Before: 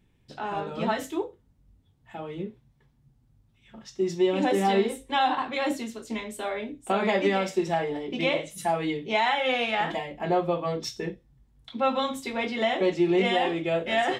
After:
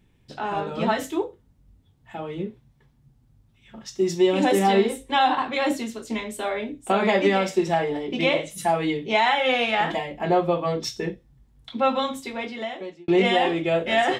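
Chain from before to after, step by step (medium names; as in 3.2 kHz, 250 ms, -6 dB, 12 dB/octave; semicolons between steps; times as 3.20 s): 3.86–4.59 s: treble shelf 6.7 kHz +9 dB; 11.77–13.08 s: fade out; trim +4 dB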